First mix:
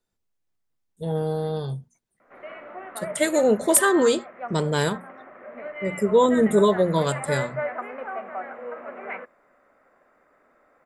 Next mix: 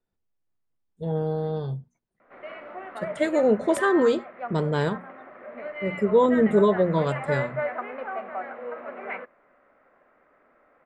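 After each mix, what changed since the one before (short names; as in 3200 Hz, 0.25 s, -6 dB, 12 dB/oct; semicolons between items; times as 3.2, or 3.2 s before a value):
background: remove air absorption 470 m; master: add tape spacing loss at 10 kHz 23 dB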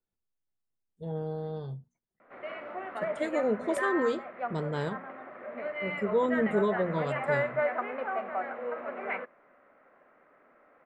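speech -8.0 dB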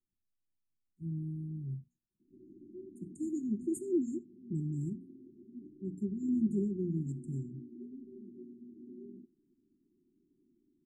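master: add brick-wall FIR band-stop 390–6400 Hz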